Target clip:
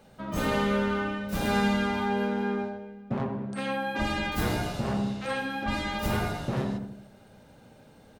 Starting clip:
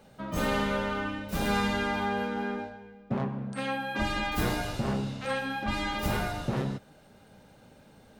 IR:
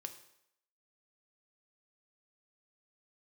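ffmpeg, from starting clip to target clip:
-filter_complex "[0:a]asplit=2[link_01][link_02];[link_02]adelay=84,lowpass=frequency=840:poles=1,volume=-3.5dB,asplit=2[link_03][link_04];[link_04]adelay=84,lowpass=frequency=840:poles=1,volume=0.54,asplit=2[link_05][link_06];[link_06]adelay=84,lowpass=frequency=840:poles=1,volume=0.54,asplit=2[link_07][link_08];[link_08]adelay=84,lowpass=frequency=840:poles=1,volume=0.54,asplit=2[link_09][link_10];[link_10]adelay=84,lowpass=frequency=840:poles=1,volume=0.54,asplit=2[link_11][link_12];[link_12]adelay=84,lowpass=frequency=840:poles=1,volume=0.54,asplit=2[link_13][link_14];[link_14]adelay=84,lowpass=frequency=840:poles=1,volume=0.54[link_15];[link_01][link_03][link_05][link_07][link_09][link_11][link_13][link_15]amix=inputs=8:normalize=0"

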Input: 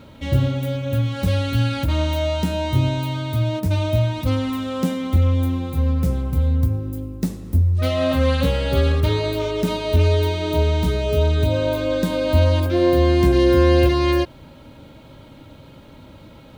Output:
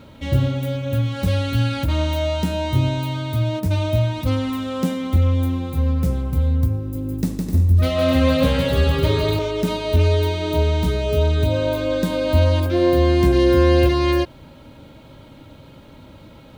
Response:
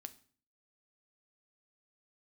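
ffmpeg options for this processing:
-filter_complex "[0:a]asettb=1/sr,asplit=3[link_01][link_02][link_03];[link_01]atrim=end=6.794[link_04];[link_02]atrim=start=6.79:end=9.39,asetpts=PTS-STARTPTS,afade=type=in:duration=0.004:curve=qsin,afade=type=out:start_time=2.596:duration=0.004:curve=qsin,aecho=1:1:160|256|313.6|348.2|368.9:0.631|0.398|0.251|0.158|0.1,atrim=end_sample=114660[link_05];[link_03]atrim=start=9.386[link_06];[link_04][link_05]acrossfade=duration=0.004:curve1=hsin:curve2=qsin[link_07];[link_07][link_06]acrossfade=duration=0.004:curve1=qsin:curve2=hsin"

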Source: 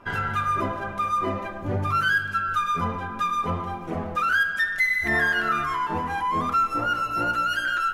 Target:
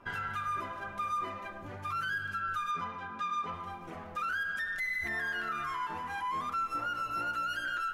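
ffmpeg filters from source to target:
ffmpeg -i in.wav -filter_complex "[0:a]acrossover=split=950[link_01][link_02];[link_01]acompressor=threshold=-38dB:ratio=6[link_03];[link_02]alimiter=limit=-22.5dB:level=0:latency=1:release=84[link_04];[link_03][link_04]amix=inputs=2:normalize=0,asettb=1/sr,asplit=3[link_05][link_06][link_07];[link_05]atrim=end=2.714[link_08];[link_06]atrim=start=2.71:end=3.54,asetpts=PTS-STARTPTS,afade=type=in:duration=0.004:curve=qsin,afade=type=out:start_time=0.826:duration=0.004:curve=qsin,highpass=100,lowpass=6200[link_09];[link_07]atrim=start=3.536[link_10];[link_08][link_09]acrossfade=duration=0.004:curve1=hsin:curve2=qsin[link_11];[link_11][link_10]acrossfade=duration=0.004:curve1=qsin:curve2=hsin,volume=-6.5dB" out.wav

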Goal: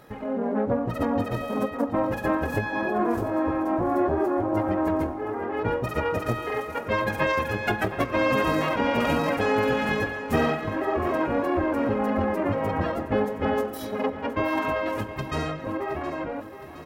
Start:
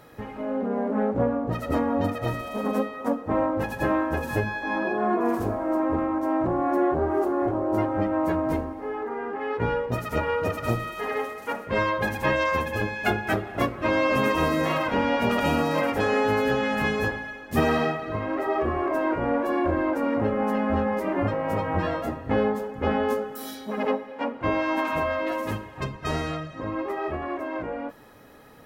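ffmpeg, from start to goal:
ffmpeg -i in.wav -af "atempo=1.7,aecho=1:1:717|1434|2151|2868|3585|4302:0.211|0.118|0.0663|0.0371|0.0208|0.0116" out.wav

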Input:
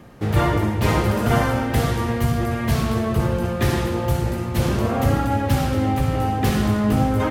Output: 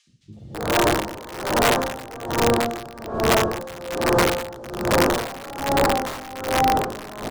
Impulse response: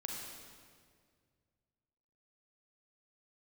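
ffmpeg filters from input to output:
-filter_complex "[0:a]asoftclip=type=tanh:threshold=-15dB,lowpass=frequency=8000:width=0.5412,lowpass=frequency=8000:width=1.3066,bass=frequency=250:gain=-9,treble=frequency=4000:gain=3,bandreject=frequency=50:width_type=h:width=6,bandreject=frequency=100:width_type=h:width=6,bandreject=frequency=150:width_type=h:width=6,acrossover=split=190|2900[link_01][link_02][link_03];[link_01]adelay=70[link_04];[link_02]adelay=330[link_05];[link_04][link_05][link_03]amix=inputs=3:normalize=0,asplit=2[link_06][link_07];[1:a]atrim=start_sample=2205,afade=type=out:start_time=0.36:duration=0.01,atrim=end_sample=16317,adelay=61[link_08];[link_07][link_08]afir=irnorm=-1:irlink=0,volume=-8dB[link_09];[link_06][link_09]amix=inputs=2:normalize=0,asplit=2[link_10][link_11];[link_11]highpass=frequency=720:poles=1,volume=28dB,asoftclip=type=tanh:threshold=-12dB[link_12];[link_10][link_12]amix=inputs=2:normalize=0,lowpass=frequency=1200:poles=1,volume=-6dB,equalizer=frequency=1700:width=0.52:gain=-12,afwtdn=0.0355,areverse,acompressor=mode=upward:threshold=-39dB:ratio=2.5,areverse,aeval=exprs='(mod(8.91*val(0)+1,2)-1)/8.91':channel_layout=same,aeval=exprs='val(0)*pow(10,-20*(0.5-0.5*cos(2*PI*1.2*n/s))/20)':channel_layout=same,volume=8.5dB"

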